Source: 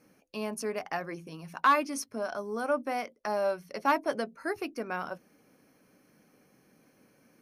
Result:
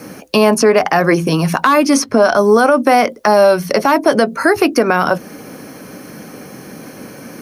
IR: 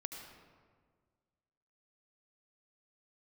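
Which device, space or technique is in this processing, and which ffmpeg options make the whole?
mastering chain: -filter_complex "[0:a]highpass=45,equalizer=frequency=2400:width_type=o:width=0.6:gain=-3,acrossover=split=390|2400|6300[link_01][link_02][link_03][link_04];[link_01]acompressor=threshold=-41dB:ratio=4[link_05];[link_02]acompressor=threshold=-34dB:ratio=4[link_06];[link_03]acompressor=threshold=-50dB:ratio=4[link_07];[link_04]acompressor=threshold=-58dB:ratio=4[link_08];[link_05][link_06][link_07][link_08]amix=inputs=4:normalize=0,acompressor=threshold=-41dB:ratio=1.5,asoftclip=type=hard:threshold=-25dB,alimiter=level_in=31.5dB:limit=-1dB:release=50:level=0:latency=1,volume=-1dB"

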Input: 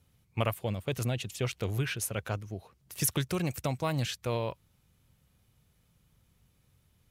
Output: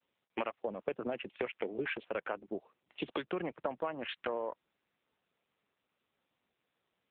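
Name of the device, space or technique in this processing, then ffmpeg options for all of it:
voicemail: -filter_complex "[0:a]agate=range=-33dB:threshold=-60dB:ratio=3:detection=peak,highpass=frequency=180:width=0.5412,highpass=frequency=180:width=1.3066,afwtdn=0.00891,asplit=3[link_01][link_02][link_03];[link_01]afade=type=out:start_time=2.01:duration=0.02[link_04];[link_02]highshelf=frequency=9100:gain=-6,afade=type=in:start_time=2.01:duration=0.02,afade=type=out:start_time=2.55:duration=0.02[link_05];[link_03]afade=type=in:start_time=2.55:duration=0.02[link_06];[link_04][link_05][link_06]amix=inputs=3:normalize=0,highpass=320,lowpass=2700,acompressor=threshold=-43dB:ratio=8,volume=11dB" -ar 8000 -c:a libopencore_amrnb -b:a 7950

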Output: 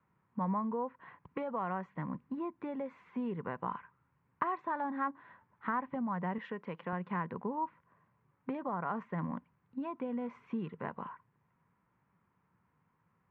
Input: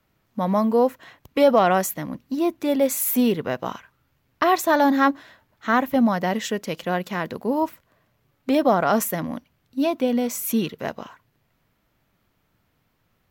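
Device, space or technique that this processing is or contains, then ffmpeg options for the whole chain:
bass amplifier: -filter_complex "[0:a]acompressor=threshold=-27dB:ratio=5,highpass=82,equalizer=frequency=170:width_type=q:width=4:gain=7,equalizer=frequency=300:width_type=q:width=4:gain=-4,equalizer=frequency=640:width_type=q:width=4:gain=-8,equalizer=frequency=1000:width_type=q:width=4:gain=10,lowpass=frequency=2100:width=0.5412,lowpass=frequency=2100:width=1.3066,asettb=1/sr,asplit=3[link_01][link_02][link_03];[link_01]atrim=end=6.384[link_04];[link_02]atrim=start=6.38:end=6.93,asetpts=PTS-STARTPTS,afade=type=in:duration=0.004:curve=qsin,afade=type=out:start_time=0.546:duration=0.004:curve=qsin,highpass=frequency=270:poles=1[link_05];[link_03]atrim=start=6.926[link_06];[link_04][link_05]acrossfade=duration=0.004:curve1=hsin:curve2=qsin[link_07];[link_07][link_06]acrossfade=duration=0.004:curve1=qsin:curve2=hsin,volume=-7dB"

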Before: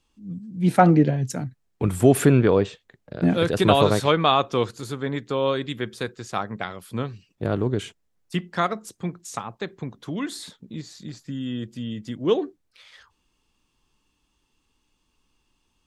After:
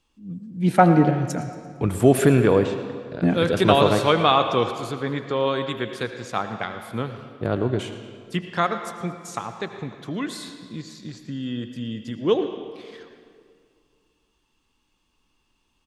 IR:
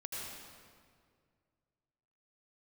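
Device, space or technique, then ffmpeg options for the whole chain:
filtered reverb send: -filter_complex "[0:a]asplit=2[link_01][link_02];[link_02]highpass=frequency=380:poles=1,lowpass=5100[link_03];[1:a]atrim=start_sample=2205[link_04];[link_03][link_04]afir=irnorm=-1:irlink=0,volume=-4.5dB[link_05];[link_01][link_05]amix=inputs=2:normalize=0,asettb=1/sr,asplit=3[link_06][link_07][link_08];[link_06]atrim=end=4.914[link_09];[link_07]atrim=start=4.91:end=5.46,asetpts=PTS-STARTPTS,afade=type=in:duration=0.004:curve=qsin,afade=type=out:start_time=0.546:duration=0.004:curve=qsin,lowpass=6800[link_10];[link_08]atrim=start=5.456[link_11];[link_09][link_10]acrossfade=duration=0.004:curve1=hsin:curve2=qsin[link_12];[link_12][link_11]acrossfade=duration=0.004:curve1=qsin:curve2=hsin,aecho=1:1:114|228|342|456:0.119|0.0535|0.0241|0.0108,volume=-1dB"

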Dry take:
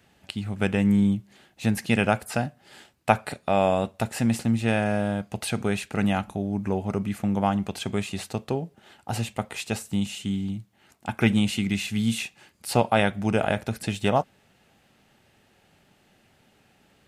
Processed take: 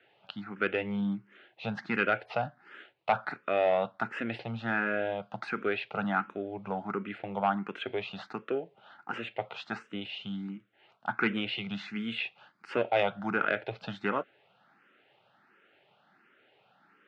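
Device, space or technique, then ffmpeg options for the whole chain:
barber-pole phaser into a guitar amplifier: -filter_complex "[0:a]highpass=270,asplit=2[link_01][link_02];[link_02]afreqshift=1.4[link_03];[link_01][link_03]amix=inputs=2:normalize=1,asoftclip=type=tanh:threshold=-17.5dB,highpass=93,equalizer=frequency=120:width_type=q:width=4:gain=6,equalizer=frequency=240:width_type=q:width=4:gain=-5,equalizer=frequency=1400:width_type=q:width=4:gain=9,lowpass=frequency=3400:width=0.5412,lowpass=frequency=3400:width=1.3066"

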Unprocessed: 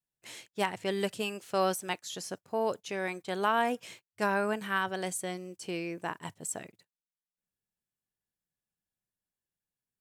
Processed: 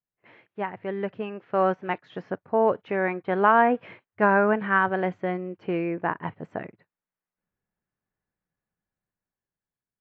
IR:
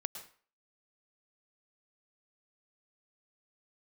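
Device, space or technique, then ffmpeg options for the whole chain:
action camera in a waterproof case: -af "lowpass=frequency=2000:width=0.5412,lowpass=frequency=2000:width=1.3066,dynaudnorm=framelen=470:gausssize=7:maxgain=9.5dB" -ar 16000 -c:a aac -b:a 48k

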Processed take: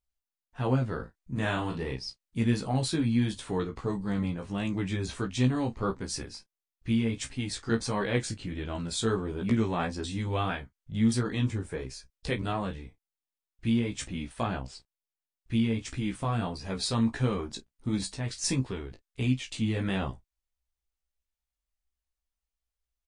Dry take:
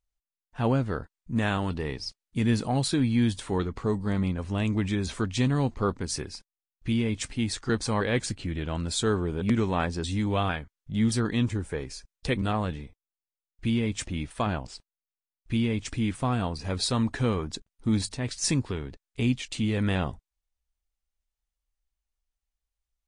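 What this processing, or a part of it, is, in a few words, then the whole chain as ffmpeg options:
double-tracked vocal: -filter_complex "[0:a]asplit=2[link_01][link_02];[link_02]adelay=31,volume=-14dB[link_03];[link_01][link_03]amix=inputs=2:normalize=0,flanger=delay=15:depth=2.9:speed=1.5,asplit=3[link_04][link_05][link_06];[link_04]afade=type=out:start_time=0.98:duration=0.02[link_07];[link_05]asplit=2[link_08][link_09];[link_09]adelay=37,volume=-5.5dB[link_10];[link_08][link_10]amix=inputs=2:normalize=0,afade=type=in:start_time=0.98:duration=0.02,afade=type=out:start_time=1.94:duration=0.02[link_11];[link_06]afade=type=in:start_time=1.94:duration=0.02[link_12];[link_07][link_11][link_12]amix=inputs=3:normalize=0"

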